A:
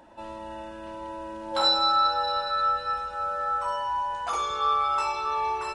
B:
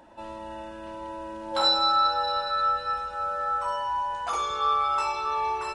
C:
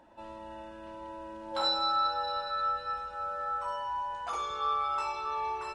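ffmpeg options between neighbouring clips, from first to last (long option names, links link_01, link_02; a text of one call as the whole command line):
ffmpeg -i in.wav -af anull out.wav
ffmpeg -i in.wav -af "highshelf=frequency=6700:gain=-5.5,volume=-6dB" out.wav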